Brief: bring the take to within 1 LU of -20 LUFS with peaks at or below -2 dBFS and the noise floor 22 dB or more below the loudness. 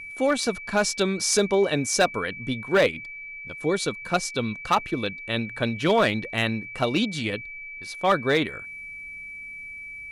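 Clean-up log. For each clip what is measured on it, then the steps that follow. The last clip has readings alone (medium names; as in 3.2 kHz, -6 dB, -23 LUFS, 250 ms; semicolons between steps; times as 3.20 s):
clipped samples 0.4%; clipping level -13.0 dBFS; steady tone 2.3 kHz; tone level -36 dBFS; loudness -24.5 LUFS; peak level -13.0 dBFS; loudness target -20.0 LUFS
-> clip repair -13 dBFS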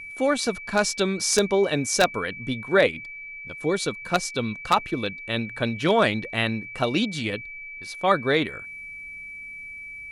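clipped samples 0.0%; steady tone 2.3 kHz; tone level -36 dBFS
-> band-stop 2.3 kHz, Q 30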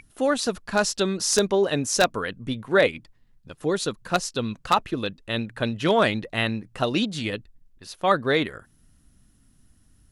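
steady tone not found; loudness -24.5 LUFS; peak level -4.0 dBFS; loudness target -20.0 LUFS
-> trim +4.5 dB; peak limiter -2 dBFS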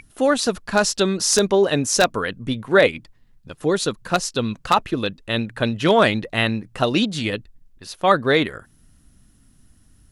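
loudness -20.0 LUFS; peak level -2.0 dBFS; noise floor -55 dBFS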